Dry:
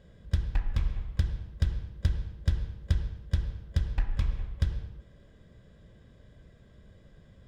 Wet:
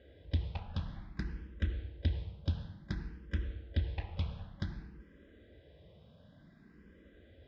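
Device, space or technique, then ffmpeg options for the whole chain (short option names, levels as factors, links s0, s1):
barber-pole phaser into a guitar amplifier: -filter_complex "[0:a]asplit=2[s0][s1];[s1]afreqshift=0.55[s2];[s0][s2]amix=inputs=2:normalize=1,asoftclip=type=tanh:threshold=0.1,highpass=76,equalizer=f=120:t=q:w=4:g=-10,equalizer=f=300:t=q:w=4:g=5,equalizer=f=1100:t=q:w=4:g=-5,lowpass=f=4600:w=0.5412,lowpass=f=4600:w=1.3066,volume=1.33"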